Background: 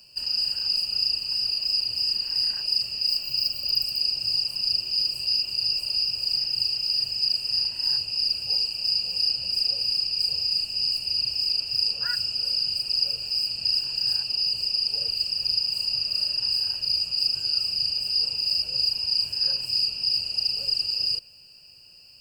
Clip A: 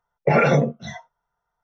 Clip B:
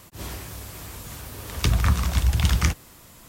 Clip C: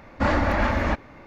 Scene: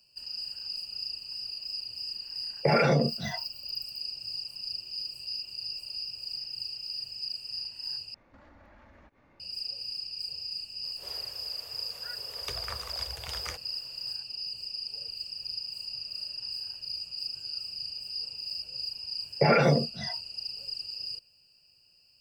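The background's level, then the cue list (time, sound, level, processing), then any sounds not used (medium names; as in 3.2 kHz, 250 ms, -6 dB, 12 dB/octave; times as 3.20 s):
background -12 dB
2.38 s: add A -0.5 dB + compression 4:1, threshold -19 dBFS
8.14 s: replace with C -16.5 dB + compression 10:1, threshold -36 dBFS
10.84 s: add B -12.5 dB + resonant low shelf 340 Hz -12.5 dB, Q 3
19.14 s: add A -5 dB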